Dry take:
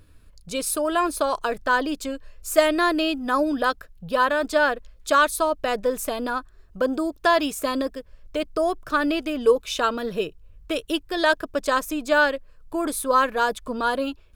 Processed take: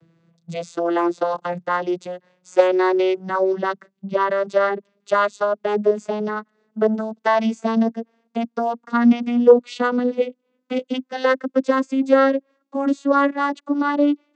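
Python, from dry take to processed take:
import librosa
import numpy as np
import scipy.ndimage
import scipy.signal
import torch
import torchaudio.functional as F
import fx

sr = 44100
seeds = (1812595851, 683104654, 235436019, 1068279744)

y = fx.vocoder_glide(x, sr, note=52, semitones=10)
y = y * librosa.db_to_amplitude(4.5)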